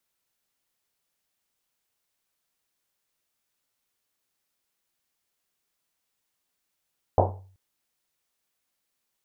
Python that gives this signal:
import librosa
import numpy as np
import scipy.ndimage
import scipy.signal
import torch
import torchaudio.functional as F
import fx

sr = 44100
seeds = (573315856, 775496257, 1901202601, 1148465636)

y = fx.risset_drum(sr, seeds[0], length_s=0.38, hz=95.0, decay_s=0.58, noise_hz=640.0, noise_width_hz=540.0, noise_pct=55)